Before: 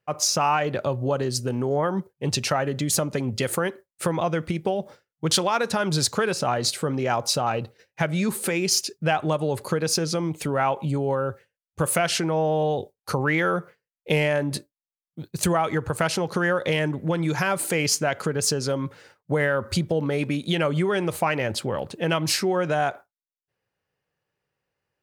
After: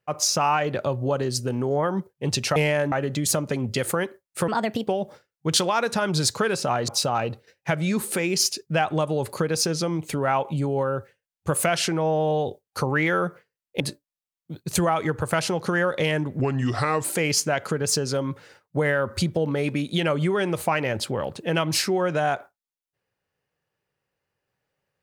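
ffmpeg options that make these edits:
-filter_complex "[0:a]asplit=9[a][b][c][d][e][f][g][h][i];[a]atrim=end=2.562[j];[b]atrim=start=14.118:end=14.482[k];[c]atrim=start=2.558:end=4.124[l];[d]atrim=start=4.12:end=4.65,asetpts=PTS-STARTPTS,asetrate=59535,aresample=44100,atrim=end_sample=17313,asetpts=PTS-STARTPTS[m];[e]atrim=start=4.646:end=6.662[n];[f]atrim=start=7.198:end=14.122[o];[g]atrim=start=14.478:end=17.074[p];[h]atrim=start=17.07:end=17.59,asetpts=PTS-STARTPTS,asetrate=35280,aresample=44100[q];[i]atrim=start=17.586[r];[j][k]acrossfade=d=0.004:c1=hsin:c2=hsin[s];[s][l]acrossfade=d=0.004:c1=hsin:c2=hsin[t];[t][m]acrossfade=d=0.004:c1=hsin:c2=hsin[u];[u][n]acrossfade=d=0.004:c1=hsin:c2=hsin[v];[v][o]acrossfade=d=0.004:c1=hsin:c2=hsin[w];[w][p]acrossfade=d=0.004:c1=hsin:c2=hsin[x];[x][q]acrossfade=d=0.004:c1=hsin:c2=hsin[y];[y][r]acrossfade=d=0.004:c1=hsin:c2=hsin"

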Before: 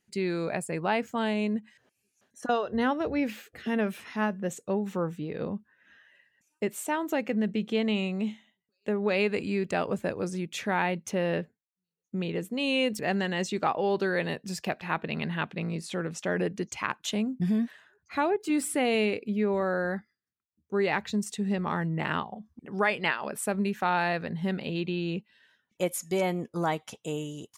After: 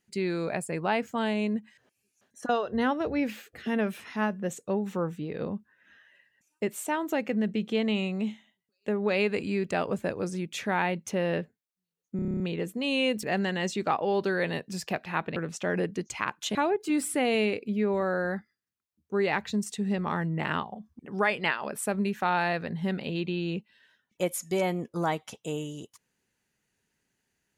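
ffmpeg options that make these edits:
-filter_complex "[0:a]asplit=11[a][b][c][d][e][f][g][h][i][j][k];[a]atrim=end=12.192[l];[b]atrim=start=12.158:end=12.192[m];[c]atrim=start=12.158:end=12.192[n];[d]atrim=start=12.158:end=12.192[o];[e]atrim=start=12.158:end=12.192[p];[f]atrim=start=12.158:end=12.192[q];[g]atrim=start=12.158:end=12.192[r];[h]atrim=start=12.158:end=12.192[s];[i]atrim=start=12.158:end=15.122[t];[j]atrim=start=15.978:end=17.172[u];[k]atrim=start=18.148[v];[l][m]acrossfade=d=0.004:c1=hsin:c2=hsin[w];[w][n]acrossfade=d=0.004:c1=hsin:c2=hsin[x];[x][o]acrossfade=d=0.004:c1=hsin:c2=hsin[y];[y][p]acrossfade=d=0.004:c1=hsin:c2=hsin[z];[z][q]acrossfade=d=0.004:c1=hsin:c2=hsin[aa];[aa][r]acrossfade=d=0.004:c1=hsin:c2=hsin[ab];[ab][s]acrossfade=d=0.004:c1=hsin:c2=hsin[ac];[ac][t]acrossfade=d=0.004:c1=hsin:c2=hsin[ad];[ad][u]acrossfade=d=0.004:c1=hsin:c2=hsin[ae];[ae][v]acrossfade=d=0.004:c1=hsin:c2=hsin"

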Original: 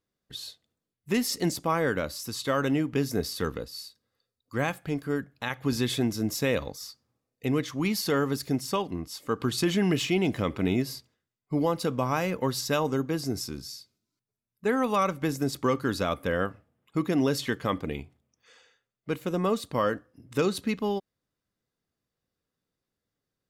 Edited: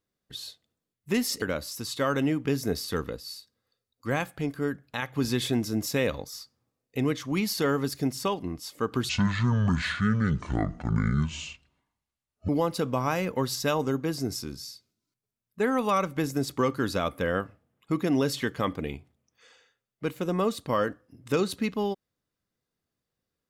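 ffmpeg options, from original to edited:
-filter_complex "[0:a]asplit=4[a][b][c][d];[a]atrim=end=1.422[e];[b]atrim=start=1.898:end=9.574[f];[c]atrim=start=9.57:end=11.54,asetpts=PTS-STARTPTS,asetrate=25578,aresample=44100[g];[d]atrim=start=11.536[h];[e][f]acrossfade=d=0.004:c1=hsin:c2=hsin[i];[i][g]acrossfade=d=0.004:c1=hsin:c2=hsin[j];[j][h]acrossfade=d=0.004:c1=hsin:c2=hsin"

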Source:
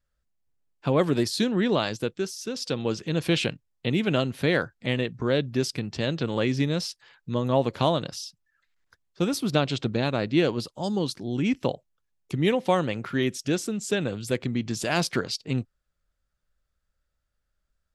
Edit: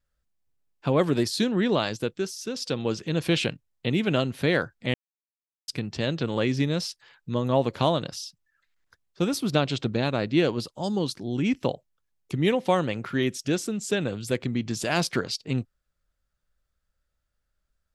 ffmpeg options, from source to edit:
-filter_complex "[0:a]asplit=3[a][b][c];[a]atrim=end=4.94,asetpts=PTS-STARTPTS,afade=t=out:st=4.936:d=0.004:c=hsin[d];[b]atrim=start=4.94:end=5.68,asetpts=PTS-STARTPTS,volume=0[e];[c]atrim=start=5.68,asetpts=PTS-STARTPTS,afade=t=in:d=0.004:c=hsin[f];[d][e][f]concat=n=3:v=0:a=1"

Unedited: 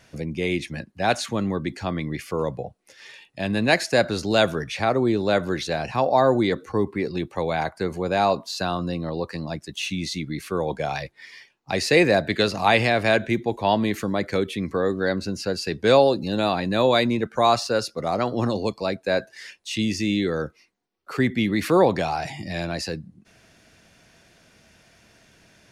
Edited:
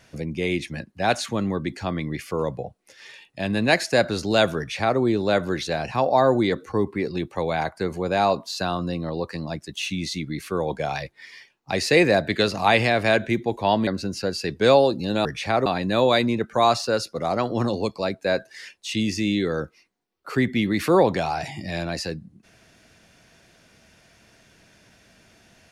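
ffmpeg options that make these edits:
-filter_complex "[0:a]asplit=4[a][b][c][d];[a]atrim=end=13.872[e];[b]atrim=start=15.098:end=16.482[f];[c]atrim=start=4.578:end=4.992[g];[d]atrim=start=16.478[h];[e][f]acrossfade=d=0.004:c1=hsin:c2=hsin[i];[i][g]acrossfade=d=0.004:c1=hsin:c2=hsin[j];[j][h]acrossfade=d=0.004:c1=hsin:c2=hsin"

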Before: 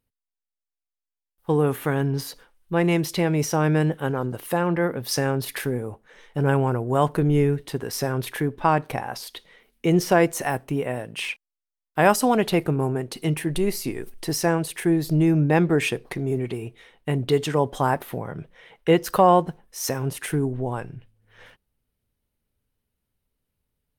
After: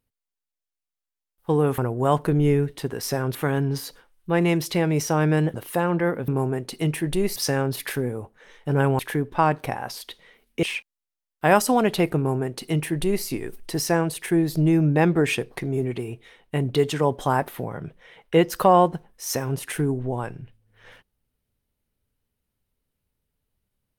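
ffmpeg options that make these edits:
-filter_complex "[0:a]asplit=8[a][b][c][d][e][f][g][h];[a]atrim=end=1.782[i];[b]atrim=start=6.678:end=8.252[j];[c]atrim=start=1.778:end=3.972[k];[d]atrim=start=4.308:end=5.052[l];[e]atrim=start=12.708:end=13.792[m];[f]atrim=start=5.048:end=6.682[n];[g]atrim=start=8.248:end=9.892[o];[h]atrim=start=11.168[p];[i][j]acrossfade=d=0.004:c1=hsin:c2=hsin[q];[q][k]acrossfade=d=0.004:c1=hsin:c2=hsin[r];[r][l]acrossfade=d=0.004:c1=hsin:c2=hsin[s];[s][m]acrossfade=d=0.004:c1=hsin:c2=hsin[t];[t][n]acrossfade=d=0.004:c1=hsin:c2=hsin[u];[u][o]acrossfade=d=0.004:c1=hsin:c2=hsin[v];[v][p]acrossfade=d=0.004:c1=hsin:c2=hsin"

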